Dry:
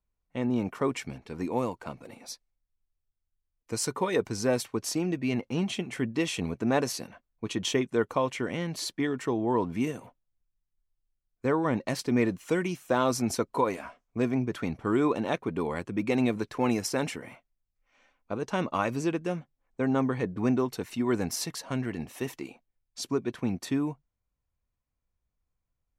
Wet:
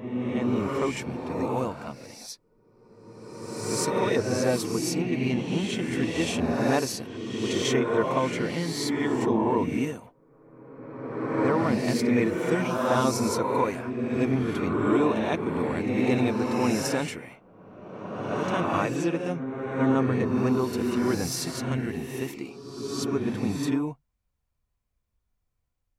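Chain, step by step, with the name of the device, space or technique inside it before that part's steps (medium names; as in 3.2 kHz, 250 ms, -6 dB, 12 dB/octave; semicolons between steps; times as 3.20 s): reverse reverb (reverse; reverberation RT60 1.9 s, pre-delay 16 ms, DRR -1 dB; reverse)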